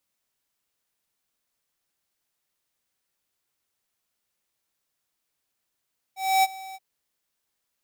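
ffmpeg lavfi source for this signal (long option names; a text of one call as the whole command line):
ffmpeg -f lavfi -i "aevalsrc='0.126*(2*lt(mod(766*t,1),0.5)-1)':duration=0.628:sample_rate=44100,afade=type=in:duration=0.273,afade=type=out:start_time=0.273:duration=0.033:silence=0.0891,afade=type=out:start_time=0.59:duration=0.038" out.wav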